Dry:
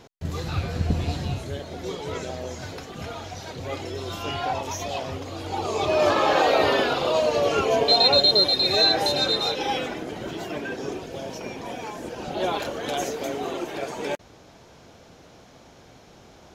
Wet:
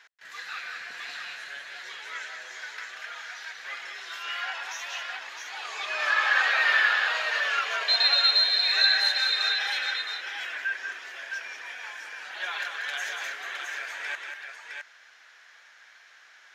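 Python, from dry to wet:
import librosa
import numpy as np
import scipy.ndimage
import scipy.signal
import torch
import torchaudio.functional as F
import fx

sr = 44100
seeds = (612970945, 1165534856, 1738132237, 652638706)

y = fx.highpass_res(x, sr, hz=1700.0, q=4.6)
y = fx.high_shelf(y, sr, hz=8600.0, db=-9.5)
y = fx.echo_multitap(y, sr, ms=(187, 662), db=(-6.0, -5.5))
y = y * librosa.db_to_amplitude(-4.0)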